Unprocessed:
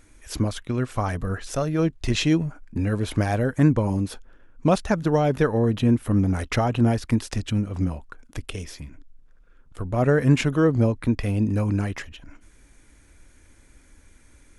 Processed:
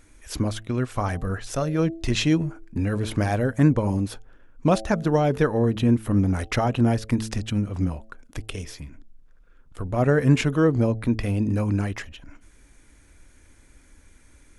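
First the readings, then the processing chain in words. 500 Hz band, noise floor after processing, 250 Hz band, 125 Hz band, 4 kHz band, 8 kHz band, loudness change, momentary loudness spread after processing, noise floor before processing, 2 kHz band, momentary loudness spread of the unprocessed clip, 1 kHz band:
-0.5 dB, -54 dBFS, 0.0 dB, -0.5 dB, 0.0 dB, 0.0 dB, -0.5 dB, 15 LU, -54 dBFS, 0.0 dB, 15 LU, 0.0 dB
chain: de-hum 109.9 Hz, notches 7

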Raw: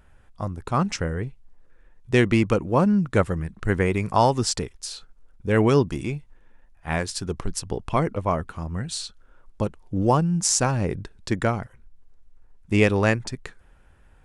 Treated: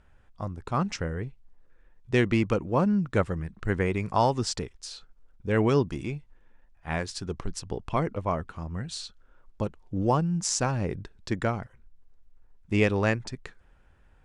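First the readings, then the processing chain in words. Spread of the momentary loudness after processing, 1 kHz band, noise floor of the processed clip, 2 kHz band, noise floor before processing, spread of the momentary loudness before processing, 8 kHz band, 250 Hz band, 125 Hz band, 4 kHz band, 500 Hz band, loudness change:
15 LU, -4.5 dB, -60 dBFS, -4.5 dB, -55 dBFS, 15 LU, -7.5 dB, -4.5 dB, -4.5 dB, -5.0 dB, -4.5 dB, -4.5 dB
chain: low-pass 7.2 kHz 12 dB/octave; trim -4.5 dB

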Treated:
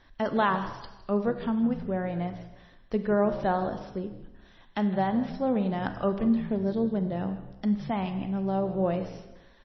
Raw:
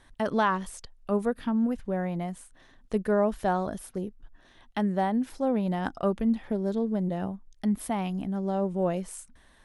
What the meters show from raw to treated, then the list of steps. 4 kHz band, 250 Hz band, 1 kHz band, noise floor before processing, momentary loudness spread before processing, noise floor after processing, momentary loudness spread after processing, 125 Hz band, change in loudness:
+0.5 dB, +0.5 dB, 0.0 dB, -58 dBFS, 11 LU, -55 dBFS, 11 LU, +1.0 dB, +0.5 dB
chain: frequency-shifting echo 159 ms, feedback 32%, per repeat -63 Hz, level -15.5 dB; Schroeder reverb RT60 1 s, combs from 31 ms, DRR 9.5 dB; MP3 24 kbps 22.05 kHz

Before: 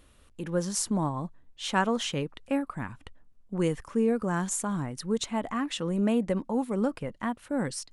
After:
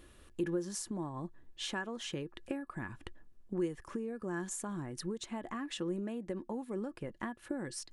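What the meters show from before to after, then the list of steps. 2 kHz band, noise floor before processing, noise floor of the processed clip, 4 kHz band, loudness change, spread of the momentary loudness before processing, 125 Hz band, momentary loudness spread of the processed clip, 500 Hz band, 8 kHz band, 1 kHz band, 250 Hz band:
-8.0 dB, -59 dBFS, -60 dBFS, -8.0 dB, -10.0 dB, 10 LU, -10.5 dB, 7 LU, -9.5 dB, -9.5 dB, -12.5 dB, -9.5 dB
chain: compression 12:1, threshold -37 dBFS, peak gain reduction 18 dB; small resonant body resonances 350/1700 Hz, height 13 dB, ringing for 85 ms

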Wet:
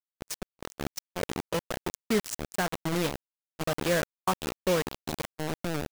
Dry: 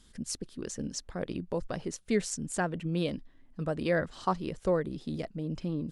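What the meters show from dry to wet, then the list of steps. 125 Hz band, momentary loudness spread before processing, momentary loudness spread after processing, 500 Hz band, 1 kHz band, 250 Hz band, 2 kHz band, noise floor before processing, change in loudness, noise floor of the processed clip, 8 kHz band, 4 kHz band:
-0.5 dB, 8 LU, 11 LU, +1.5 dB, +3.0 dB, -0.5 dB, +4.5 dB, -59 dBFS, +1.5 dB, under -85 dBFS, +1.5 dB, +7.0 dB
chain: bit crusher 5-bit; gate -39 dBFS, range -29 dB; trim +1 dB

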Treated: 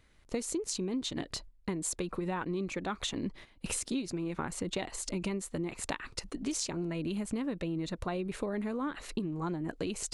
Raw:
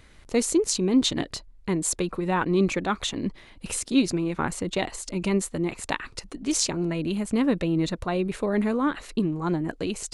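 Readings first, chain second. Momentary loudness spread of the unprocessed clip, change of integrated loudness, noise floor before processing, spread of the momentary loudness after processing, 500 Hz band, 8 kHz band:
9 LU, -9.5 dB, -51 dBFS, 4 LU, -10.0 dB, -8.0 dB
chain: gate -43 dBFS, range -11 dB; compression 10:1, threshold -30 dBFS, peak gain reduction 15 dB; trim -1 dB

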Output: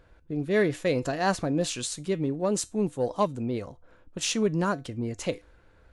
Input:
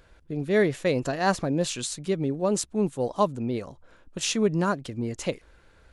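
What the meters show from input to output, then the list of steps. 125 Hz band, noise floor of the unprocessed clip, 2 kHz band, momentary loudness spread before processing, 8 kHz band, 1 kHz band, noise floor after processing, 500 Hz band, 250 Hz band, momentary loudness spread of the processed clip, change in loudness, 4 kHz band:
-1.5 dB, -57 dBFS, -1.5 dB, 10 LU, -1.0 dB, -2.0 dB, -58 dBFS, -1.5 dB, -1.5 dB, 9 LU, -1.5 dB, -1.0 dB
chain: feedback comb 100 Hz, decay 0.24 s, harmonics odd, mix 50%; in parallel at -4 dB: saturation -22.5 dBFS, distortion -16 dB; on the sum: tape noise reduction on one side only decoder only

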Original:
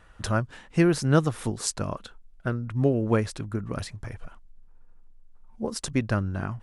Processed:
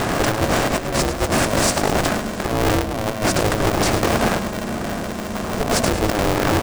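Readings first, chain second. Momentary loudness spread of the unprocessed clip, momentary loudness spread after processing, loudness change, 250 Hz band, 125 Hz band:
13 LU, 8 LU, +7.0 dB, +6.0 dB, +3.5 dB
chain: spectral levelling over time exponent 0.4; low-pass 9.2 kHz; peaking EQ 440 Hz +7 dB 1 oct; hum notches 50/100/150/200/250/300/350/400/450 Hz; in parallel at -1 dB: peak limiter -11.5 dBFS, peak gain reduction 9.5 dB; on the sum: compressor with a negative ratio -17 dBFS, ratio -0.5; overload inside the chain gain 13 dB; on a send: feedback delay 105 ms, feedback 57%, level -11 dB; on the sum: polarity switched at an audio rate 210 Hz

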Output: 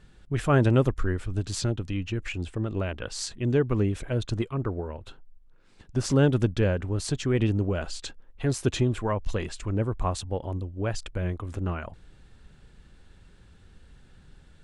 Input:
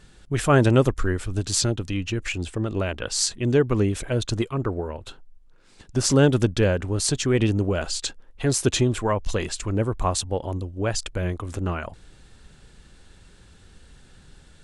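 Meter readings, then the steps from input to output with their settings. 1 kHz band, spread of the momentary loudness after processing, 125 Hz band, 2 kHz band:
-5.0 dB, 11 LU, -2.0 dB, -5.5 dB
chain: tone controls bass +3 dB, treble -7 dB; trim -5 dB

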